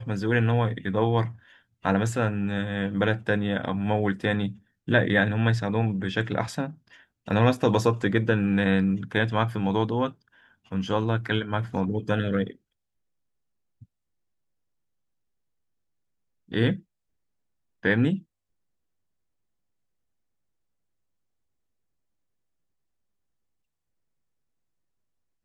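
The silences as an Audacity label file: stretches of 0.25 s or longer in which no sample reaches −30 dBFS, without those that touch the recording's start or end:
1.280000	1.850000	silence
4.500000	4.880000	silence
6.690000	7.280000	silence
10.090000	10.720000	silence
12.500000	16.520000	silence
16.760000	17.850000	silence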